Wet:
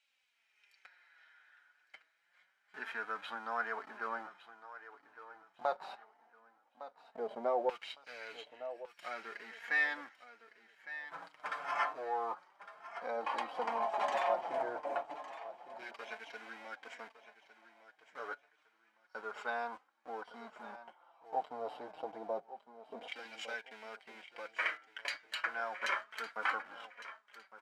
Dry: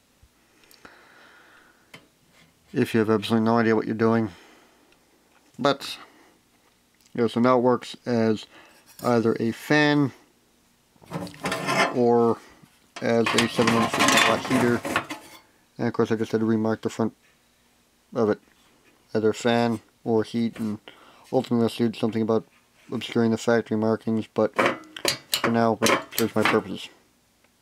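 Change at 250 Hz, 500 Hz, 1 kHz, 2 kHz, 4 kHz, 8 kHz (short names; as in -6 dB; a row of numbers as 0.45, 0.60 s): -32.0 dB, -17.5 dB, -10.5 dB, -10.5 dB, -19.0 dB, under -25 dB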